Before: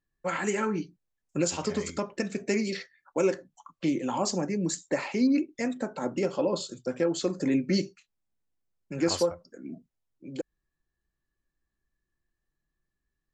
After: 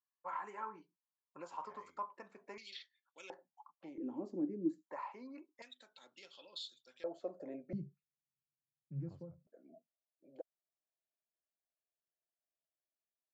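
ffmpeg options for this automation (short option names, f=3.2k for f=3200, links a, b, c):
-af "asetnsamples=n=441:p=0,asendcmd='2.58 bandpass f 3400;3.3 bandpass f 830;3.98 bandpass f 310;4.87 bandpass f 1000;5.62 bandpass f 3600;7.04 bandpass f 650;7.73 bandpass f 140;9.47 bandpass f 650',bandpass=f=1k:t=q:w=7.6:csg=0"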